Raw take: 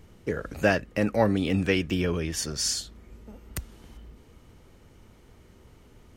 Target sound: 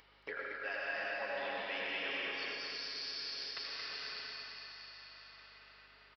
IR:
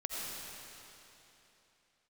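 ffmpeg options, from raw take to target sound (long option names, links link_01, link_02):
-filter_complex "[0:a]agate=range=-27dB:threshold=-42dB:ratio=16:detection=peak,highpass=1000,aecho=1:1:7.3:0.38[link_01];[1:a]atrim=start_sample=2205,asetrate=38808,aresample=44100[link_02];[link_01][link_02]afir=irnorm=-1:irlink=0,areverse,acompressor=threshold=-42dB:ratio=12,areverse,aresample=11025,aresample=44100,asplit=2[link_03][link_04];[link_04]aecho=0:1:226|452|678|904|1130|1356:0.631|0.284|0.128|0.0575|0.0259|0.0116[link_05];[link_03][link_05]amix=inputs=2:normalize=0,acompressor=mode=upward:threshold=-51dB:ratio=2.5,aeval=exprs='val(0)+0.000141*(sin(2*PI*50*n/s)+sin(2*PI*2*50*n/s)/2+sin(2*PI*3*50*n/s)/3+sin(2*PI*4*50*n/s)/4+sin(2*PI*5*50*n/s)/5)':channel_layout=same,volume=4.5dB"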